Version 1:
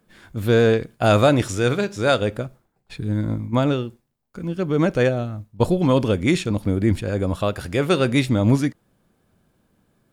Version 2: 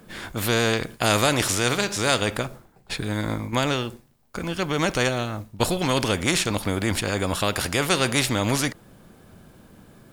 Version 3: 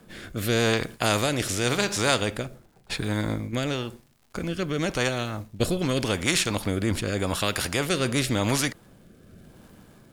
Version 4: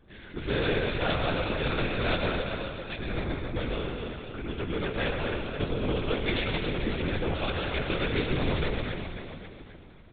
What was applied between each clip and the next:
every bin compressed towards the loudest bin 2 to 1
surface crackle 120 per second −45 dBFS; rotating-speaker cabinet horn 0.9 Hz
repeating echo 267 ms, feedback 54%, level −6.5 dB; on a send at −3 dB: convolution reverb RT60 1.4 s, pre-delay 107 ms; on the sum: linear-prediction vocoder at 8 kHz whisper; level −5.5 dB

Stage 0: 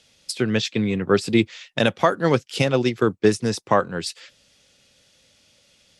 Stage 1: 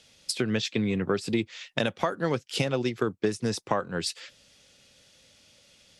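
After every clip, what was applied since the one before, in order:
downward compressor 4 to 1, threshold −24 dBFS, peak gain reduction 11.5 dB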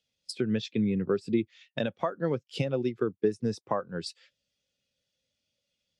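every bin expanded away from the loudest bin 1.5 to 1
level −4.5 dB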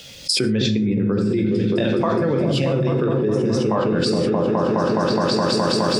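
on a send: echo whose low-pass opens from repeat to repeat 209 ms, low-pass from 200 Hz, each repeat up 1 octave, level 0 dB
on the sum: reverb whose tail is shaped and stops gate 210 ms falling, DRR 3.5 dB
envelope flattener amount 100%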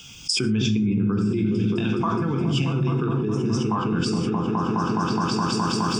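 phaser with its sweep stopped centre 2,800 Hz, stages 8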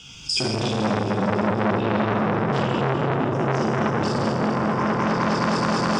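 high-frequency loss of the air 53 metres
dense smooth reverb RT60 4.6 s, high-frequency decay 0.55×, DRR −5 dB
saturating transformer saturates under 1,500 Hz

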